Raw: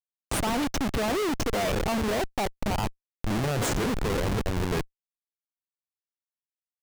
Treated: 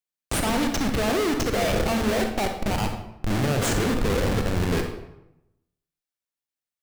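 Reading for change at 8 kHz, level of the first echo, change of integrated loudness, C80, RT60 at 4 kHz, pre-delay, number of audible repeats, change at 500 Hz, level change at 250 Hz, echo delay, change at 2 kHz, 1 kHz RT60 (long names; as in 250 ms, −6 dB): +3.5 dB, no echo audible, +3.5 dB, 9.5 dB, 0.60 s, 31 ms, no echo audible, +3.5 dB, +4.0 dB, no echo audible, +4.0 dB, 0.85 s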